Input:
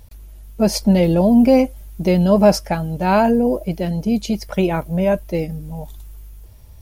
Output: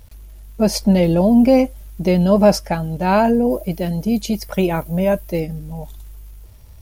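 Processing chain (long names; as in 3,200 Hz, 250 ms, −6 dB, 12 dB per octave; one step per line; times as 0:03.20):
0:03.50–0:05.40: high-shelf EQ 11,000 Hz +11.5 dB
surface crackle 190 per second −44 dBFS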